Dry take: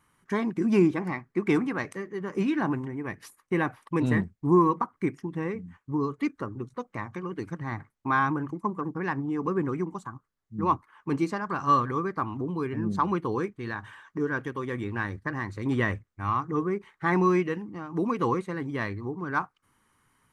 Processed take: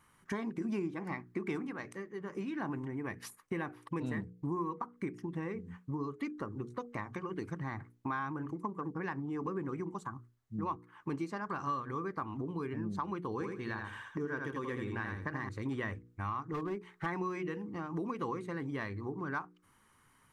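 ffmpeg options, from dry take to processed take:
ffmpeg -i in.wav -filter_complex "[0:a]asettb=1/sr,asplit=3[link_01][link_02][link_03];[link_01]atrim=end=13.324[link_04];[link_02]atrim=start=13.32:end=15.49,asetpts=PTS-STARTPTS,afade=type=in:duration=0.004:curve=qsin,afade=type=out:start_time=2.166:duration=0.004:curve=qsin,aecho=1:1:81|162|243:0.562|0.112|0.0225,atrim=end_sample=95697[link_05];[link_03]atrim=start=15.486[link_06];[link_04][link_05]acrossfade=duration=0.004:curve1=hsin:curve2=qsin[link_07];[link_07][link_06]acrossfade=duration=0.004:curve1=qsin:curve2=hsin,asettb=1/sr,asplit=3[link_08][link_09][link_10];[link_08]atrim=end=16.434[link_11];[link_09]atrim=start=16.43:end=17.06,asetpts=PTS-STARTPTS,afade=type=in:duration=0.004:curve=qsin,afade=type=out:start_time=0.626:duration=0.004:curve=qsin,asoftclip=type=hard:threshold=-24.5dB[link_12];[link_10]atrim=start=17.056[link_13];[link_11][link_12]acrossfade=duration=0.004:curve1=hsin:curve2=qsin[link_14];[link_14][link_13]acrossfade=duration=0.004:curve1=qsin:curve2=hsin,asplit=3[link_15][link_16][link_17];[link_15]atrim=end=1.78,asetpts=PTS-STARTPTS,afade=type=out:start_time=1.6:duration=0.18:silence=0.398107[link_18];[link_16]atrim=start=1.78:end=2.53,asetpts=PTS-STARTPTS,volume=-8dB[link_19];[link_17]atrim=start=2.53,asetpts=PTS-STARTPTS,afade=type=in:duration=0.18:silence=0.398107[link_20];[link_18][link_19][link_20]concat=n=3:v=0:a=1,bandreject=frequency=60:width_type=h:width=6,bandreject=frequency=120:width_type=h:width=6,bandreject=frequency=180:width_type=h:width=6,bandreject=frequency=240:width_type=h:width=6,bandreject=frequency=300:width_type=h:width=6,bandreject=frequency=360:width_type=h:width=6,bandreject=frequency=420:width_type=h:width=6,bandreject=frequency=480:width_type=h:width=6,acompressor=threshold=-37dB:ratio=4,volume=1dB" out.wav

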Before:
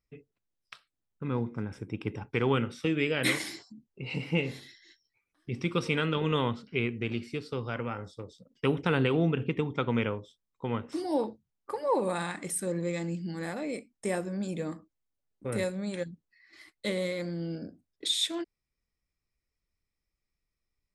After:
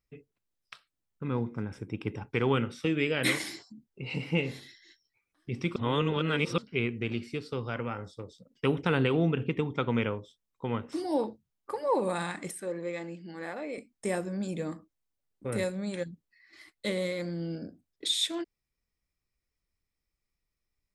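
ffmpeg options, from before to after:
ffmpeg -i in.wav -filter_complex "[0:a]asettb=1/sr,asplit=3[link_01][link_02][link_03];[link_01]atrim=end=12.514[link_04];[link_02]atrim=start=12.51:end=13.78,asetpts=PTS-STARTPTS,afade=type=in:duration=0.004:curve=qsin,afade=type=out:start_time=1.266:duration=0.004:curve=qsin,bass=frequency=250:gain=-14,treble=frequency=4000:gain=-11[link_05];[link_03]atrim=start=13.776[link_06];[link_04][link_05]acrossfade=duration=0.004:curve1=hsin:curve2=qsin[link_07];[link_07][link_06]acrossfade=duration=0.004:curve1=qsin:curve2=hsin,asplit=3[link_08][link_09][link_10];[link_08]atrim=end=5.762[link_11];[link_09]atrim=start=5.758:end=6.582,asetpts=PTS-STARTPTS,areverse[link_12];[link_10]atrim=start=6.578[link_13];[link_11][link_12]acrossfade=duration=0.004:curve1=hsin:curve2=hsin[link_14];[link_14][link_13]acrossfade=duration=0.004:curve1=hsin:curve2=hsin" out.wav

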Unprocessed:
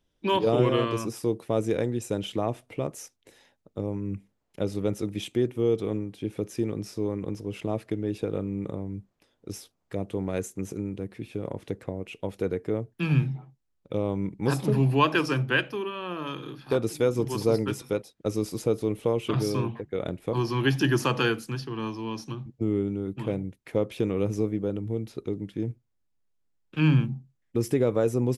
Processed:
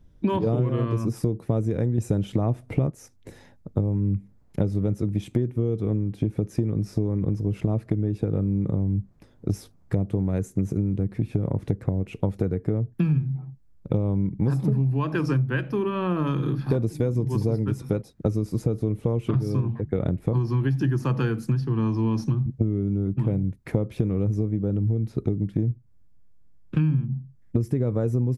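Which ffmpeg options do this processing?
ffmpeg -i in.wav -filter_complex "[0:a]asettb=1/sr,asplit=3[link_01][link_02][link_03];[link_01]atrim=end=16.704[link_04];[link_02]atrim=start=16.7:end=17.53,asetpts=PTS-STARTPTS,afade=type=in:duration=0.004:curve=qsin,afade=type=out:start_time=0.826:duration=0.004:curve=qsin,bandreject=frequency=1300:width=6.4[link_05];[link_03]atrim=start=17.526[link_06];[link_04][link_05]acrossfade=duration=0.004:curve1=hsin:curve2=qsin[link_07];[link_07][link_06]acrossfade=duration=0.004:curve1=qsin:curve2=hsin,asplit=3[link_08][link_09][link_10];[link_08]atrim=end=1.982[link_11];[link_09]atrim=start=1.978:end=2.902,asetpts=PTS-STARTPTS,volume=8.5dB[link_12];[link_10]atrim=start=2.898[link_13];[link_11][link_12]acrossfade=duration=0.004:curve1=hsin:curve2=hsin[link_14];[link_14][link_13]acrossfade=duration=0.004:curve1=hsin:curve2=hsin,bass=frequency=250:gain=15,treble=frequency=4000:gain=-5,acompressor=threshold=-28dB:ratio=12,equalizer=frequency=3000:width_type=o:width=0.8:gain=-8,volume=8dB" out.wav

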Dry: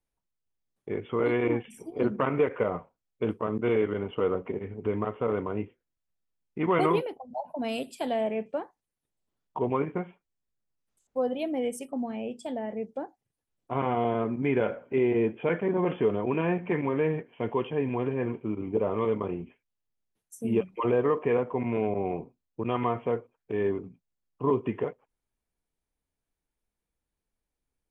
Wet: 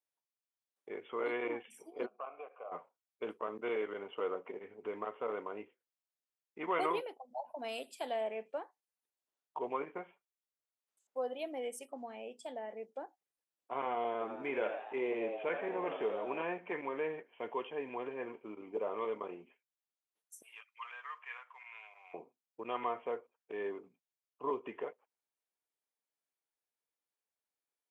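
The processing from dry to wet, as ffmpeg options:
ffmpeg -i in.wav -filter_complex "[0:a]asplit=3[link_01][link_02][link_03];[link_01]afade=type=out:start_time=2.05:duration=0.02[link_04];[link_02]asplit=3[link_05][link_06][link_07];[link_05]bandpass=frequency=730:width_type=q:width=8,volume=0dB[link_08];[link_06]bandpass=frequency=1090:width_type=q:width=8,volume=-6dB[link_09];[link_07]bandpass=frequency=2440:width_type=q:width=8,volume=-9dB[link_10];[link_08][link_09][link_10]amix=inputs=3:normalize=0,afade=type=in:start_time=2.05:duration=0.02,afade=type=out:start_time=2.71:duration=0.02[link_11];[link_03]afade=type=in:start_time=2.71:duration=0.02[link_12];[link_04][link_11][link_12]amix=inputs=3:normalize=0,asettb=1/sr,asplit=3[link_13][link_14][link_15];[link_13]atrim=end=14.124[link_16];[link_14]atrim=start=14.12:end=16.43,asetpts=PTS-STARTPTS,afade=type=in:duration=0.004:curve=qsin,afade=type=out:start_time=2.306:duration=0.004:curve=qsin,asplit=7[link_17][link_18][link_19][link_20][link_21][link_22][link_23];[link_18]adelay=84,afreqshift=99,volume=-9dB[link_24];[link_19]adelay=168,afreqshift=198,volume=-14.4dB[link_25];[link_20]adelay=252,afreqshift=297,volume=-19.7dB[link_26];[link_21]adelay=336,afreqshift=396,volume=-25.1dB[link_27];[link_22]adelay=420,afreqshift=495,volume=-30.4dB[link_28];[link_23]adelay=504,afreqshift=594,volume=-35.8dB[link_29];[link_17][link_24][link_25][link_26][link_27][link_28][link_29]amix=inputs=7:normalize=0,atrim=end_sample=101871[link_30];[link_15]atrim=start=16.426[link_31];[link_16][link_30]acrossfade=duration=0.004:curve1=hsin:curve2=qsin[link_32];[link_32][link_31]acrossfade=duration=0.004:curve1=qsin:curve2=hsin,asettb=1/sr,asplit=3[link_33][link_34][link_35];[link_33]atrim=end=20.424[link_36];[link_34]atrim=start=20.42:end=22.14,asetpts=PTS-STARTPTS,afade=type=in:duration=0.004:curve=qsin,afade=type=out:start_time=1.716:duration=0.004:curve=qsin,highpass=frequency=1300:width=0.5412,highpass=frequency=1300:width=1.3066[link_37];[link_35]atrim=start=22.136[link_38];[link_36][link_37]acrossfade=duration=0.004:curve1=hsin:curve2=qsin[link_39];[link_39][link_38]acrossfade=duration=0.004:curve1=qsin:curve2=hsin,highpass=500,volume=-6dB" out.wav

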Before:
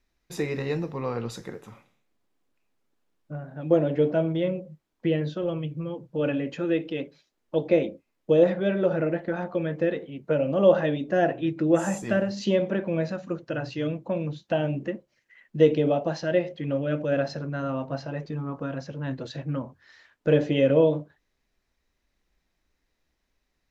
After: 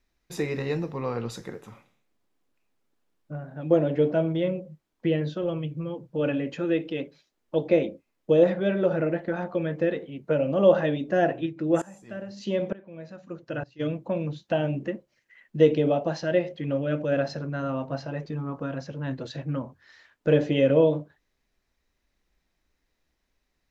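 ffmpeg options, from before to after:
ffmpeg -i in.wav -filter_complex "[0:a]asplit=3[link_01][link_02][link_03];[link_01]afade=type=out:start_time=11.45:duration=0.02[link_04];[link_02]aeval=exprs='val(0)*pow(10,-21*if(lt(mod(-1.1*n/s,1),2*abs(-1.1)/1000),1-mod(-1.1*n/s,1)/(2*abs(-1.1)/1000),(mod(-1.1*n/s,1)-2*abs(-1.1)/1000)/(1-2*abs(-1.1)/1000))/20)':channel_layout=same,afade=type=in:start_time=11.45:duration=0.02,afade=type=out:start_time=13.79:duration=0.02[link_05];[link_03]afade=type=in:start_time=13.79:duration=0.02[link_06];[link_04][link_05][link_06]amix=inputs=3:normalize=0" out.wav

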